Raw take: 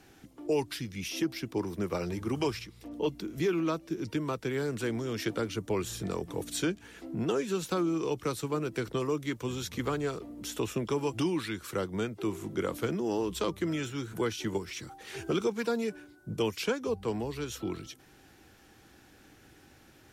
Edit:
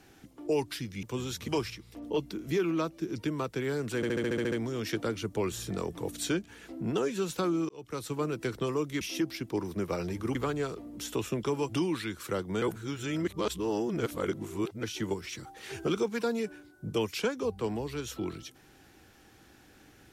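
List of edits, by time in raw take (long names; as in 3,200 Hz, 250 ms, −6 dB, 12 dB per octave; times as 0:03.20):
0:01.03–0:02.37: swap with 0:09.34–0:09.79
0:04.85: stutter 0.07 s, 9 plays
0:08.02–0:08.48: fade in linear
0:12.06–0:14.27: reverse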